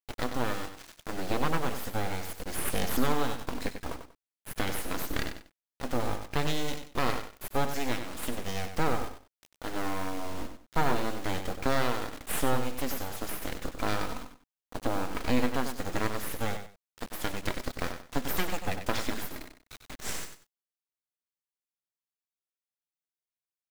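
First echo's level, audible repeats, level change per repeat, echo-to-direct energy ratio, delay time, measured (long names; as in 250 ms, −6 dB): −8.5 dB, 2, −12.5 dB, −8.5 dB, 95 ms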